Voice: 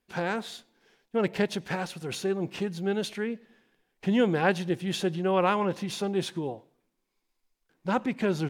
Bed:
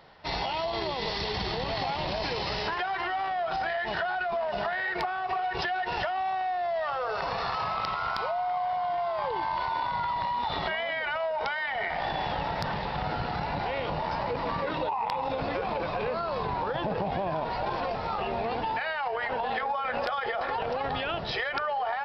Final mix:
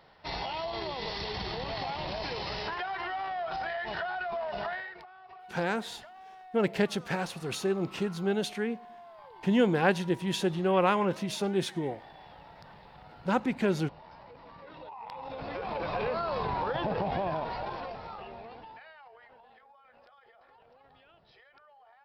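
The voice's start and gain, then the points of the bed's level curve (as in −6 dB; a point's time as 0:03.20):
5.40 s, −0.5 dB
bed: 0:04.74 −4.5 dB
0:05.03 −20.5 dB
0:14.52 −20.5 dB
0:15.96 −1 dB
0:17.26 −1 dB
0:19.61 −29.5 dB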